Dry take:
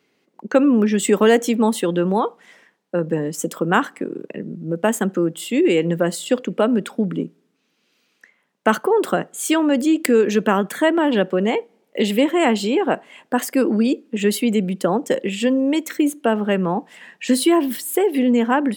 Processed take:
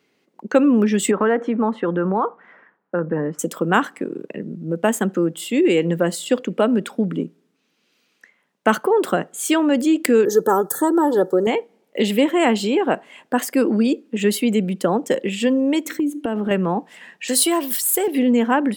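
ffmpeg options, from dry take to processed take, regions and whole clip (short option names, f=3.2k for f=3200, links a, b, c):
-filter_complex "[0:a]asettb=1/sr,asplit=3[a][b][c];[a]atrim=end=1.114[d];[b]atrim=start=1.11:end=3.39,asetpts=PTS-STARTPTS,afade=t=in:d=0.004:c=qsin,afade=t=out:st=2.276:d=0.004:c=qsin,lowpass=f=1.4k:t=q:w=2.3,acompressor=threshold=-17dB:ratio=2:attack=3.2:release=140:knee=1:detection=peak[e];[c]atrim=start=3.386[f];[d][e]acrossfade=d=0.004:c1=hsin:c2=qsin[g];[g][f]acrossfade=d=0.004:c1=qsin:c2=hsin,asettb=1/sr,asplit=3[h][i][j];[h]atrim=end=10.254[k];[i]atrim=start=10.25:end=11.47,asetpts=PTS-STARTPTS,afade=t=in:d=0.004:c=qsin,afade=t=out:st=1.216:d=0.004:c=qsin,asuperstop=centerf=2500:order=4:qfactor=0.74,equalizer=f=14k:w=0.61:g=13,aecho=1:1:2.3:0.71,atrim=end_sample=53802[l];[j]atrim=start=11.466[m];[k][l]acrossfade=d=0.004:c1=hsin:c2=qsin[n];[n][m]acrossfade=d=0.004:c1=qsin:c2=hsin,asettb=1/sr,asplit=3[o][p][q];[o]atrim=end=15.854[r];[p]atrim=start=15.85:end=16.51,asetpts=PTS-STARTPTS,afade=t=in:d=0.004:c=qsin,afade=t=out:st=0.656:d=0.004:c=qsin,equalizer=f=300:w=2.4:g=12.5,acompressor=threshold=-18dB:ratio=8:attack=3.2:release=140:knee=1:detection=peak[s];[q]atrim=start=16.506[t];[r][s]acrossfade=d=0.004:c1=hsin:c2=qsin[u];[u][t]acrossfade=d=0.004:c1=qsin:c2=hsin,asettb=1/sr,asplit=3[v][w][x];[v]atrim=end=17.284[y];[w]atrim=start=17.28:end=18.08,asetpts=PTS-STARTPTS,afade=t=in:d=0.004:c=qsin,afade=t=out:st=0.796:d=0.004:c=qsin,aeval=exprs='if(lt(val(0),0),0.708*val(0),val(0))':c=same,highpass=f=110:p=1,bass=f=250:g=-13,treble=f=4k:g=10[z];[x]atrim=start=18.076[aa];[y][z]acrossfade=d=0.004:c1=hsin:c2=qsin[ab];[ab][aa]acrossfade=d=0.004:c1=qsin:c2=hsin"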